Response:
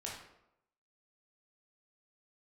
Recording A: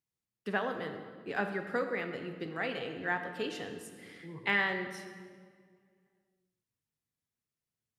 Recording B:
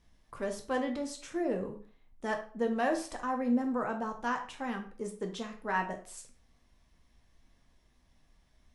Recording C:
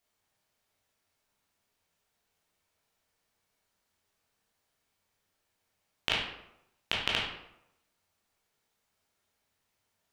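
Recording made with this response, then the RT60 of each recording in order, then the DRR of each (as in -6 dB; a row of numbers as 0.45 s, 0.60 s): C; 1.9 s, 0.40 s, 0.85 s; 5.5 dB, 3.5 dB, -4.0 dB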